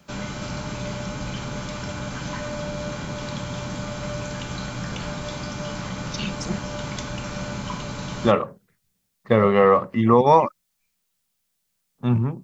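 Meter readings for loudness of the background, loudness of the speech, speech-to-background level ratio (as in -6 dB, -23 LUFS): -31.0 LUFS, -19.0 LUFS, 12.0 dB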